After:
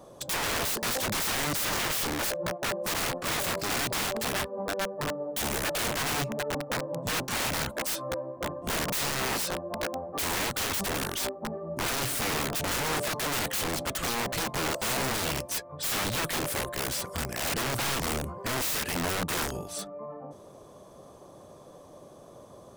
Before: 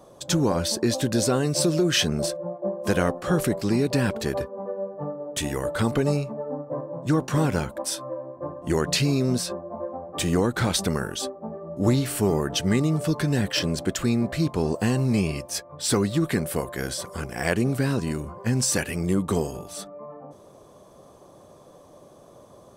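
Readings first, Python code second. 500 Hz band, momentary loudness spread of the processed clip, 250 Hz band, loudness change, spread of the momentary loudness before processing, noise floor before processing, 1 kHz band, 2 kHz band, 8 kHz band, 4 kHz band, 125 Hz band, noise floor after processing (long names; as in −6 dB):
−7.0 dB, 6 LU, −12.0 dB, −4.0 dB, 10 LU, −50 dBFS, +1.0 dB, +1.5 dB, −1.0 dB, −1.0 dB, −12.0 dB, −50 dBFS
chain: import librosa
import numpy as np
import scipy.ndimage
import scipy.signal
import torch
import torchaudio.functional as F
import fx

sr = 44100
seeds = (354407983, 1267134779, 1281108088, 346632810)

y = (np.mod(10.0 ** (24.5 / 20.0) * x + 1.0, 2.0) - 1.0) / 10.0 ** (24.5 / 20.0)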